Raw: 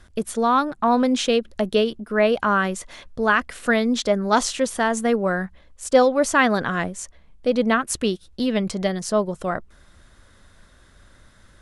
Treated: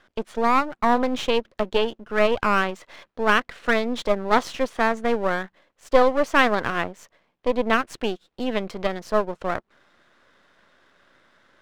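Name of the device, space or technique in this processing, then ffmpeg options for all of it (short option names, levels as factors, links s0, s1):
crystal radio: -af "highpass=320,lowpass=3200,aeval=exprs='if(lt(val(0),0),0.251*val(0),val(0))':c=same,volume=1.33"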